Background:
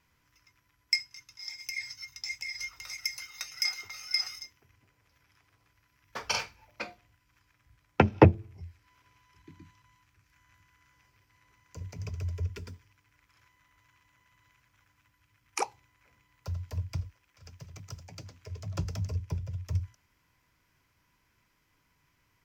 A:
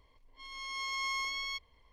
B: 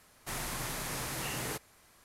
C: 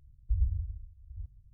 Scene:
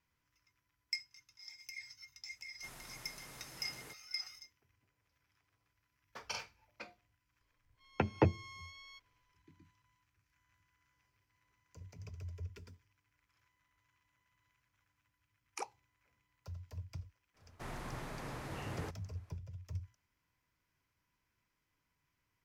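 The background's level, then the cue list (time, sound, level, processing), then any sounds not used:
background -11.5 dB
2.36 s: add B -16.5 dB
7.41 s: add A -17.5 dB
17.33 s: add B -3.5 dB, fades 0.05 s + low-pass 1.2 kHz 6 dB/octave
not used: C

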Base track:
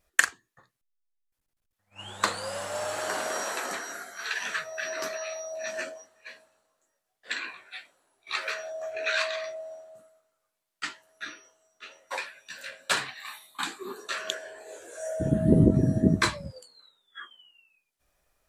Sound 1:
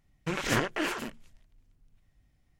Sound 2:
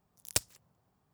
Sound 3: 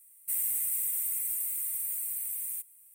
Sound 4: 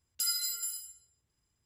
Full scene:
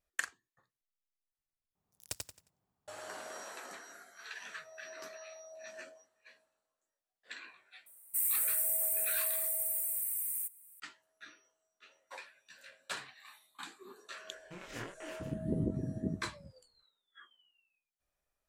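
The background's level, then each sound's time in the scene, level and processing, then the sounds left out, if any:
base track -14.5 dB
1.75 s: replace with 2 -12 dB + feedback delay 89 ms, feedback 30%, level -3 dB
7.86 s: add 3 -0.5 dB + peaking EQ 3.8 kHz -9.5 dB 1 oct
14.24 s: add 1 -14 dB + chorus 0.79 Hz, delay 19 ms, depth 6.1 ms
not used: 4

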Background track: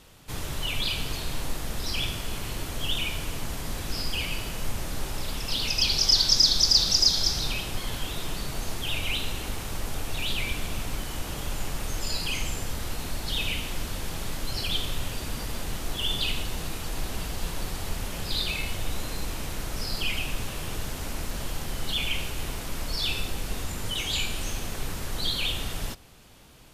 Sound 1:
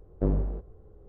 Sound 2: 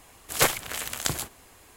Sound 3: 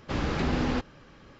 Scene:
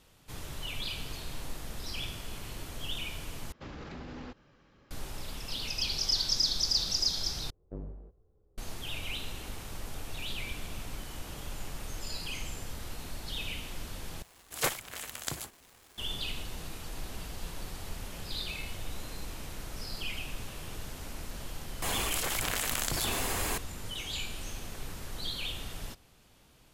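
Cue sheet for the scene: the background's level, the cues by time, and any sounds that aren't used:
background track -8.5 dB
3.52 s: replace with 3 -10.5 dB + peak limiter -24.5 dBFS
7.50 s: replace with 1 -16 dB
14.22 s: replace with 2 -8.5 dB + crackle 480 per s -37 dBFS
21.82 s: add 2 -16 dB + level flattener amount 100%

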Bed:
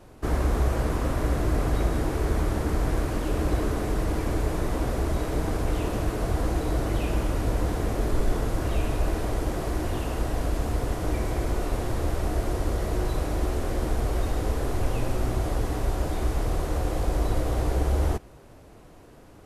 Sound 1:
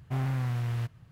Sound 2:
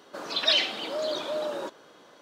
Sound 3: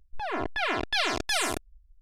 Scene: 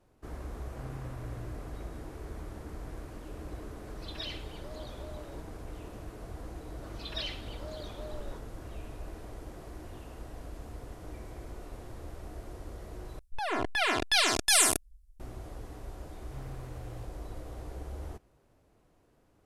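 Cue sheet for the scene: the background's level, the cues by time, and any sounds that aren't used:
bed -17 dB
0.66 s: add 1 -14 dB + low-pass 2.3 kHz
3.72 s: add 2 -18 dB
6.69 s: add 2 -15 dB
13.19 s: replace with 3 -1 dB + peaking EQ 10 kHz +13.5 dB 1.5 oct
16.20 s: add 1 -16.5 dB

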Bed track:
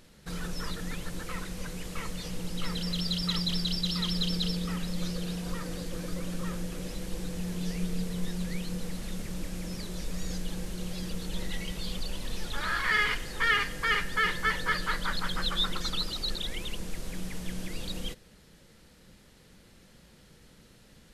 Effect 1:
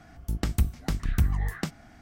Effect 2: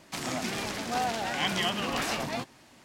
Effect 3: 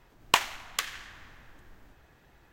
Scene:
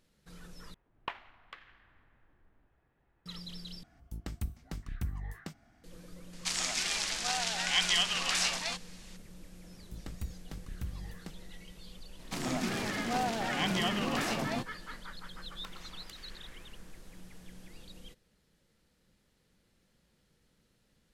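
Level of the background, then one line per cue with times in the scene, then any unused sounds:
bed track -15 dB
0.74 s: replace with 3 -12.5 dB + distance through air 410 m
3.83 s: replace with 1 -12.5 dB
6.33 s: add 2 -5.5 dB + frequency weighting ITU-R 468
9.63 s: add 1 -16 dB
12.19 s: add 2 -4 dB + peaking EQ 190 Hz +6 dB 2.3 oct
15.31 s: add 3 -5.5 dB + compression, threshold -45 dBFS

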